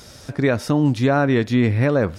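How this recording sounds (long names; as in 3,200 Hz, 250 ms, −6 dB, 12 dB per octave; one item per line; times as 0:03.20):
background noise floor −43 dBFS
spectral slope −5.5 dB per octave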